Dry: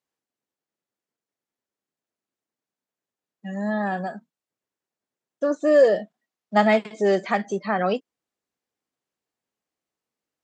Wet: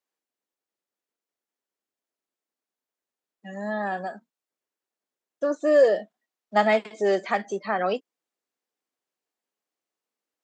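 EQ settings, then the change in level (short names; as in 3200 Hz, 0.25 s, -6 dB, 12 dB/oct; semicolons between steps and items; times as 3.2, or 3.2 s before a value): HPF 270 Hz 12 dB/oct; -1.5 dB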